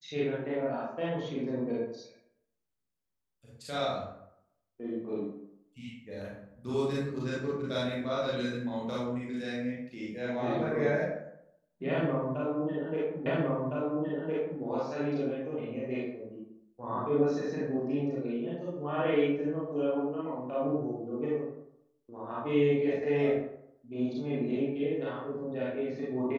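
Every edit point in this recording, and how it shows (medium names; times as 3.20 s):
13.26 s: repeat of the last 1.36 s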